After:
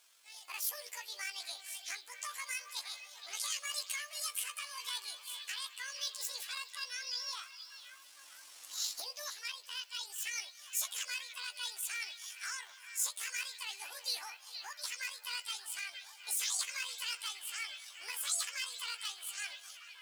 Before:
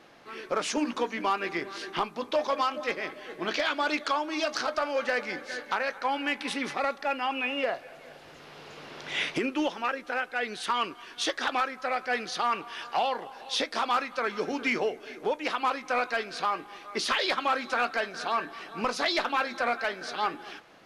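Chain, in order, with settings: rotating-head pitch shifter +11 st; pre-emphasis filter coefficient 0.97; repeats whose band climbs or falls 486 ms, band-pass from 3.3 kHz, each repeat -0.7 oct, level -8 dB; speed mistake 24 fps film run at 25 fps; trim -2.5 dB

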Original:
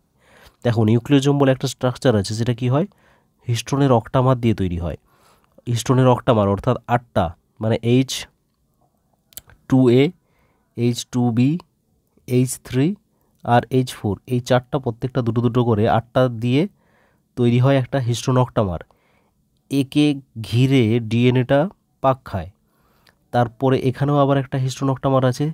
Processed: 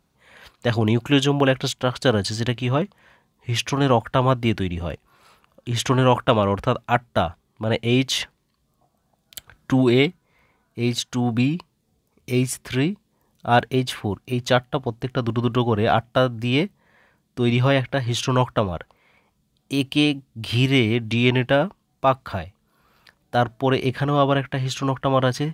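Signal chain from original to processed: peaking EQ 2.5 kHz +9 dB 2.3 oct; trim -4 dB

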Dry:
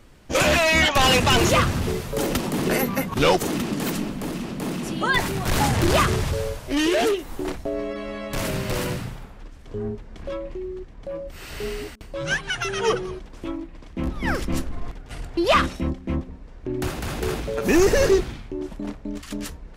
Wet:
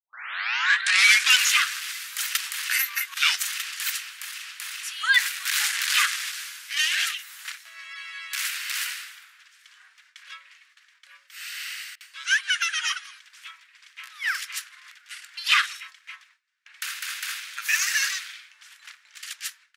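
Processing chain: tape start-up on the opening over 1.35 s; steep high-pass 1.5 kHz 36 dB/octave; speakerphone echo 160 ms, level -27 dB; gate with hold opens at -50 dBFS; trim +4.5 dB

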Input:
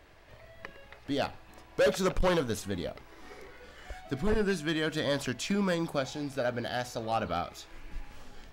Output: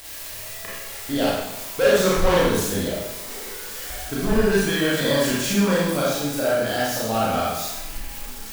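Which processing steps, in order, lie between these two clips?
zero-crossing glitches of -32.5 dBFS; Schroeder reverb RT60 0.95 s, combs from 28 ms, DRR -7 dB; trim +2 dB

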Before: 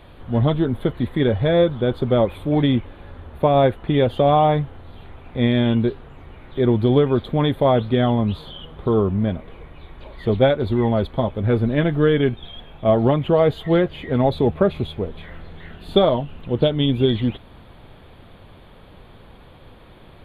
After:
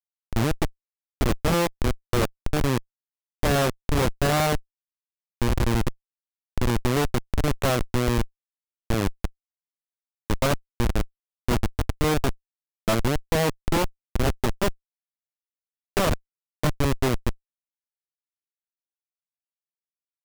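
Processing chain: Chebyshev shaper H 7 -18 dB, 8 -8 dB, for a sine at -2.5 dBFS; formant shift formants +2 st; Schmitt trigger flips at -11.5 dBFS; trim -3.5 dB

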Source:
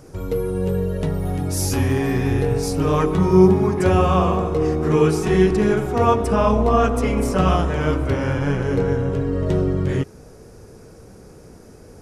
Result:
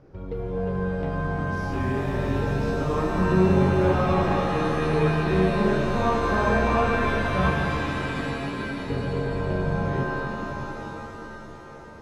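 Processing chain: 7.50–8.90 s: cascade formant filter i; distance through air 290 m; pitch-shifted reverb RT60 3.8 s, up +7 st, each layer -2 dB, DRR 1 dB; trim -8 dB

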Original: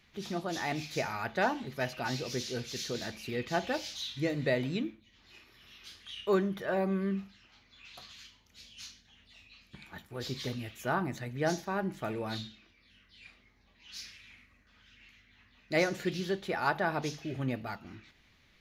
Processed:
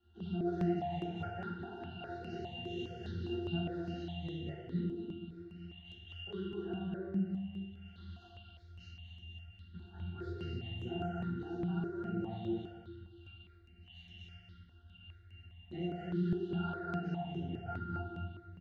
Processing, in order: compression, threshold -37 dBFS, peak gain reduction 13.5 dB; peaking EQ 3.6 kHz +8 dB 0.81 oct; pitch-class resonator F, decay 0.32 s; feedback delay 240 ms, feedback 27%, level -3 dB; simulated room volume 320 m³, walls mixed, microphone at 2.2 m; stepped phaser 4.9 Hz 590–4700 Hz; trim +12 dB

